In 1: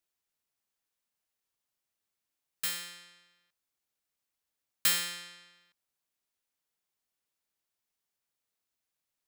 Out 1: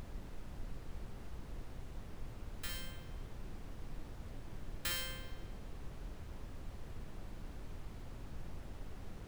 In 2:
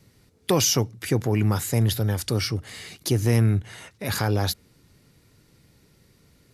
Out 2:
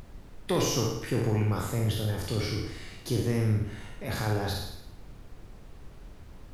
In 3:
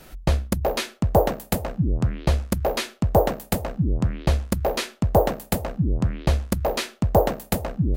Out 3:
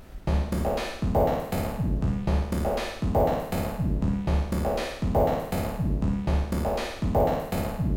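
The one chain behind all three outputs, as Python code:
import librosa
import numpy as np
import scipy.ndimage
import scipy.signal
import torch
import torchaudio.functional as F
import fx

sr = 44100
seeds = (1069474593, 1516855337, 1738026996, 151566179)

p1 = fx.spec_trails(x, sr, decay_s=0.65)
p2 = fx.high_shelf(p1, sr, hz=3500.0, db=-9.0)
p3 = 10.0 ** (-19.5 / 20.0) * np.tanh(p2 / 10.0 ** (-19.5 / 20.0))
p4 = p2 + F.gain(torch.from_numpy(p3), -11.0).numpy()
p5 = fx.room_flutter(p4, sr, wall_m=9.5, rt60_s=0.64)
p6 = fx.dmg_noise_colour(p5, sr, seeds[0], colour='brown', level_db=-35.0)
y = F.gain(torch.from_numpy(p6), -9.0).numpy()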